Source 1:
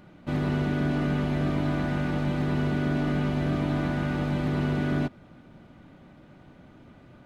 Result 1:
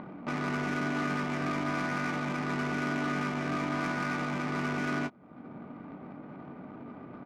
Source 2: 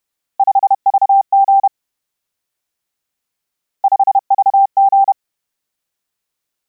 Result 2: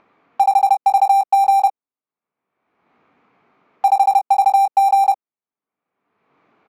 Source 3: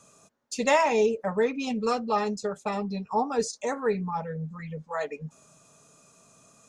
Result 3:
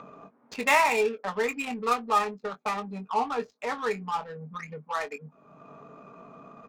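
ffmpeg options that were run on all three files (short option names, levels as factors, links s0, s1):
-filter_complex "[0:a]highpass=310,equalizer=f=350:t=q:w=4:g=-6,equalizer=f=550:t=q:w=4:g=-8,equalizer=f=1200:t=q:w=4:g=6,equalizer=f=2300:t=q:w=4:g=9,equalizer=f=5300:t=q:w=4:g=-4,lowpass=f=6500:w=0.5412,lowpass=f=6500:w=1.3066,adynamicsmooth=sensitivity=5.5:basefreq=560,asplit=2[s0][s1];[s1]adelay=21,volume=0.316[s2];[s0][s2]amix=inputs=2:normalize=0,acompressor=mode=upward:threshold=0.0316:ratio=2.5"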